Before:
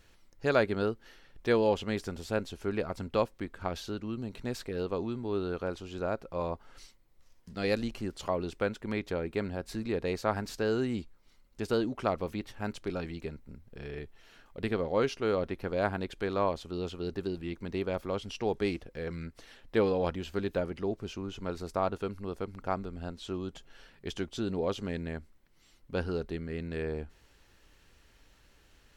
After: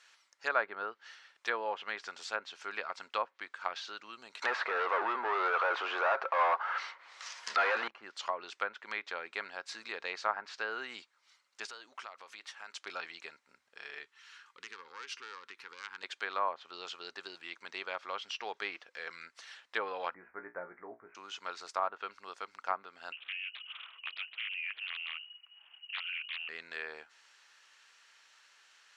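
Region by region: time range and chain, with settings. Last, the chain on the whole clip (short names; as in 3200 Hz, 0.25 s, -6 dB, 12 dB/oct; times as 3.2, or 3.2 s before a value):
4.42–7.88 tone controls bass -12 dB, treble +3 dB + overdrive pedal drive 34 dB, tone 2900 Hz, clips at -15.5 dBFS
11.66–12.81 low shelf 330 Hz -6.5 dB + compressor, threshold -41 dBFS
14.03–16.03 self-modulated delay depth 0.18 ms + compressor 8:1, threshold -37 dBFS + Butterworth band-stop 650 Hz, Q 1.5
20.14–21.15 steep low-pass 2200 Hz 96 dB/oct + tilt -3.5 dB/oct + resonator 59 Hz, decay 0.18 s, mix 90%
23.12–26.49 compressor 3:1, threshold -43 dBFS + inverted band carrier 2900 Hz + Doppler distortion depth 0.98 ms
whole clip: Chebyshev band-pass 1200–7100 Hz, order 2; treble ducked by the level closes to 1400 Hz, closed at -35 dBFS; gain +5 dB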